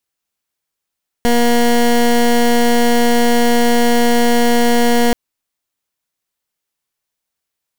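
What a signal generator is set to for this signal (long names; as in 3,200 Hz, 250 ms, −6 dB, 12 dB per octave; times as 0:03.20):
pulse wave 238 Hz, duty 19% −11.5 dBFS 3.88 s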